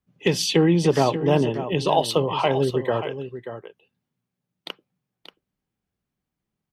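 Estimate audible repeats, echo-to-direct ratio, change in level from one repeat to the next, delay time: 1, -11.0 dB, no regular repeats, 584 ms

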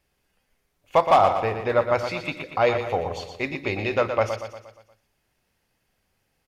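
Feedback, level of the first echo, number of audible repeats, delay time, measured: 50%, -8.0 dB, 5, 118 ms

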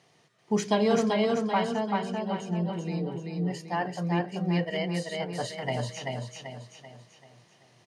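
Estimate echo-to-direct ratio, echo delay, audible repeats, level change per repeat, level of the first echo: -2.0 dB, 387 ms, 5, -7.5 dB, -3.0 dB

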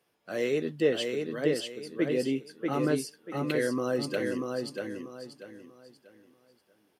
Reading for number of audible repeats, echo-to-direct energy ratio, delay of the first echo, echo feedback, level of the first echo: 3, -3.5 dB, 639 ms, 30%, -4.0 dB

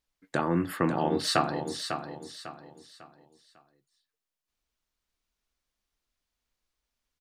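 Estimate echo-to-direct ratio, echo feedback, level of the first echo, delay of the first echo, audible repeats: -7.5 dB, 35%, -8.0 dB, 549 ms, 3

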